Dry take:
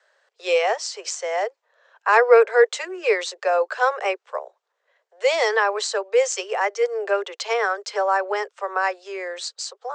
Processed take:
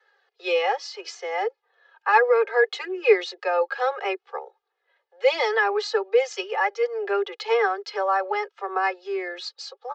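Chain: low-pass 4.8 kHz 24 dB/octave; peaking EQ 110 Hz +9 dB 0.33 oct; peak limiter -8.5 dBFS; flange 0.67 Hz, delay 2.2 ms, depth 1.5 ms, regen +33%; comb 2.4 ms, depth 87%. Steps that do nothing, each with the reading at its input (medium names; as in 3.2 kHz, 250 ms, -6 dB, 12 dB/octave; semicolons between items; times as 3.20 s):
peaking EQ 110 Hz: input has nothing below 340 Hz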